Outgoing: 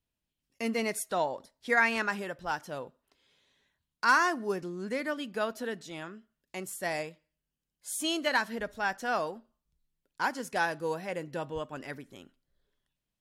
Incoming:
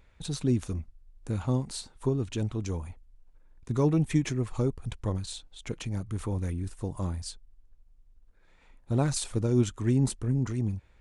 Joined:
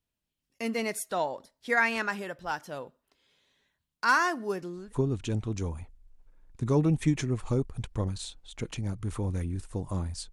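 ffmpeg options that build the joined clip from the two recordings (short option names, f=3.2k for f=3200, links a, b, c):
-filter_complex "[0:a]apad=whole_dur=10.32,atrim=end=10.32,atrim=end=4.93,asetpts=PTS-STARTPTS[a];[1:a]atrim=start=1.81:end=7.4,asetpts=PTS-STARTPTS[b];[a][b]acrossfade=d=0.2:c1=tri:c2=tri"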